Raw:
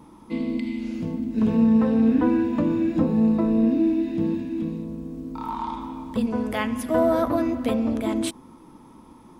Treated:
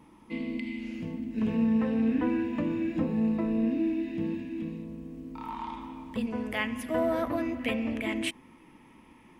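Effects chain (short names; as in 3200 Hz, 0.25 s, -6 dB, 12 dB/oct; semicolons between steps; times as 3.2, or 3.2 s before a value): band shelf 2300 Hz +8 dB 1 oct, from 7.59 s +14.5 dB; gain -7.5 dB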